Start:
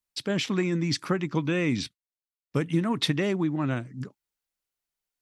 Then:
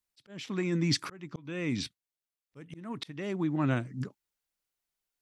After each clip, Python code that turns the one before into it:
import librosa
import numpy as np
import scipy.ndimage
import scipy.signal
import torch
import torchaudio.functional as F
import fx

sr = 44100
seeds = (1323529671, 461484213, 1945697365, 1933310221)

y = fx.auto_swell(x, sr, attack_ms=642.0)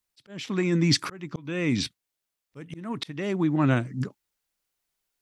y = fx.rider(x, sr, range_db=10, speed_s=2.0)
y = y * 10.0 ** (6.0 / 20.0)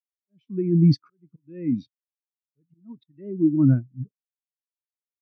y = fx.spectral_expand(x, sr, expansion=2.5)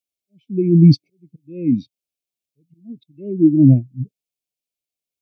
y = fx.brickwall_bandstop(x, sr, low_hz=770.0, high_hz=2100.0)
y = y * 10.0 ** (7.0 / 20.0)